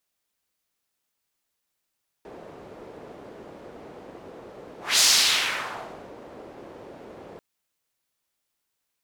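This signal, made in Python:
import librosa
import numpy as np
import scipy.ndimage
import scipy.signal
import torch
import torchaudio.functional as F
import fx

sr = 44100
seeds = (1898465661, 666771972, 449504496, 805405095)

y = fx.whoosh(sr, seeds[0], length_s=5.14, peak_s=2.75, rise_s=0.22, fall_s=1.17, ends_hz=460.0, peak_hz=5500.0, q=1.5, swell_db=26.0)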